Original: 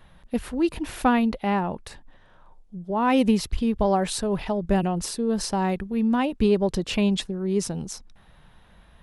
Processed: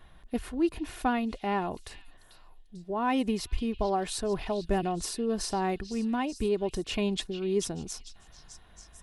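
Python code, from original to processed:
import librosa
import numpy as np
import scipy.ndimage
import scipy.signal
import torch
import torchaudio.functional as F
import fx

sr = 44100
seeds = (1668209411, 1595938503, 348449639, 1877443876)

y = x + 0.39 * np.pad(x, (int(2.8 * sr / 1000.0), 0))[:len(x)]
y = fx.rider(y, sr, range_db=3, speed_s=0.5)
y = fx.echo_stepped(y, sr, ms=443, hz=3600.0, octaves=0.7, feedback_pct=70, wet_db=-9)
y = y * 10.0 ** (-6.0 / 20.0)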